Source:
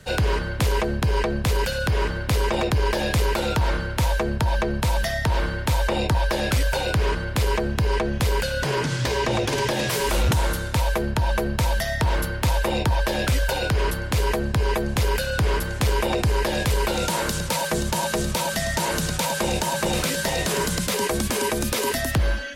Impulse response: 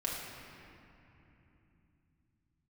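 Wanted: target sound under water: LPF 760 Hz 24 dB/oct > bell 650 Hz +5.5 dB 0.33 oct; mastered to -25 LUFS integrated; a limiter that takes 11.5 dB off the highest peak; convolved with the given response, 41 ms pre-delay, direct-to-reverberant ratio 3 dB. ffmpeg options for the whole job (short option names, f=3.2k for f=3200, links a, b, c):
-filter_complex "[0:a]alimiter=level_in=2dB:limit=-24dB:level=0:latency=1,volume=-2dB,asplit=2[a][b];[1:a]atrim=start_sample=2205,adelay=41[c];[b][c]afir=irnorm=-1:irlink=0,volume=-7.5dB[d];[a][d]amix=inputs=2:normalize=0,lowpass=f=760:w=0.5412,lowpass=f=760:w=1.3066,equalizer=f=650:t=o:w=0.33:g=5.5,volume=7dB"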